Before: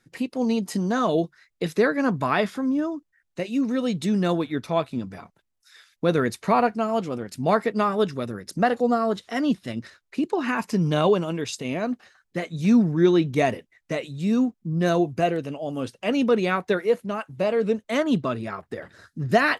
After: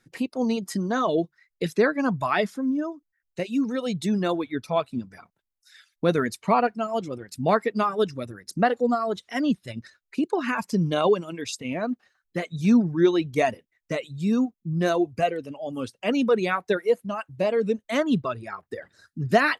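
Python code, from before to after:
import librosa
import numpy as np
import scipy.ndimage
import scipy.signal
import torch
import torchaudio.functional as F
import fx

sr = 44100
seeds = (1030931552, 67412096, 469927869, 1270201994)

y = fx.dereverb_blind(x, sr, rt60_s=1.9)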